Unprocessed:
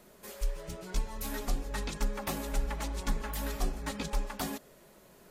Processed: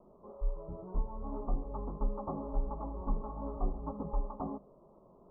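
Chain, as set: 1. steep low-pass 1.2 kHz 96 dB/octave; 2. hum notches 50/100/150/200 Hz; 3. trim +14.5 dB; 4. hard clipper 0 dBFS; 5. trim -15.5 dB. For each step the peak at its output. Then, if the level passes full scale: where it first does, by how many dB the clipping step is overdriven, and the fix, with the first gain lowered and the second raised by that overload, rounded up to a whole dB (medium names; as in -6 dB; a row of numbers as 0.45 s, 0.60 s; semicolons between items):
-19.0 dBFS, -20.0 dBFS, -5.5 dBFS, -5.5 dBFS, -21.0 dBFS; nothing clips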